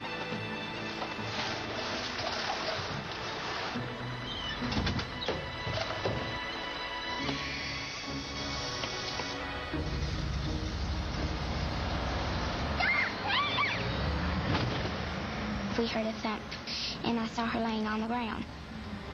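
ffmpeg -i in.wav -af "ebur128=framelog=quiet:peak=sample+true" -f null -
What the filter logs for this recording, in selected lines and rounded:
Integrated loudness:
  I:         -33.5 LUFS
  Threshold: -43.4 LUFS
Loudness range:
  LRA:         4.1 LU
  Threshold: -53.3 LUFS
  LRA low:   -34.7 LUFS
  LRA high:  -30.6 LUFS
Sample peak:
  Peak:      -16.6 dBFS
True peak:
  Peak:      -16.6 dBFS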